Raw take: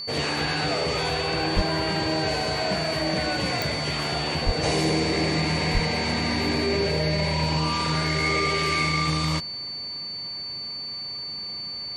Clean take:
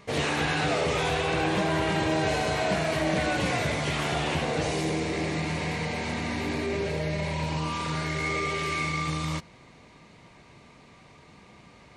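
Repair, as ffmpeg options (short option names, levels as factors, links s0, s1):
-filter_complex "[0:a]adeclick=t=4,bandreject=f=4500:w=30,asplit=3[s0][s1][s2];[s0]afade=t=out:st=1.55:d=0.02[s3];[s1]highpass=f=140:w=0.5412,highpass=f=140:w=1.3066,afade=t=in:st=1.55:d=0.02,afade=t=out:st=1.67:d=0.02[s4];[s2]afade=t=in:st=1.67:d=0.02[s5];[s3][s4][s5]amix=inputs=3:normalize=0,asplit=3[s6][s7][s8];[s6]afade=t=out:st=4.45:d=0.02[s9];[s7]highpass=f=140:w=0.5412,highpass=f=140:w=1.3066,afade=t=in:st=4.45:d=0.02,afade=t=out:st=4.57:d=0.02[s10];[s8]afade=t=in:st=4.57:d=0.02[s11];[s9][s10][s11]amix=inputs=3:normalize=0,asplit=3[s12][s13][s14];[s12]afade=t=out:st=5.73:d=0.02[s15];[s13]highpass=f=140:w=0.5412,highpass=f=140:w=1.3066,afade=t=in:st=5.73:d=0.02,afade=t=out:st=5.85:d=0.02[s16];[s14]afade=t=in:st=5.85:d=0.02[s17];[s15][s16][s17]amix=inputs=3:normalize=0,asetnsamples=n=441:p=0,asendcmd='4.63 volume volume -5dB',volume=1"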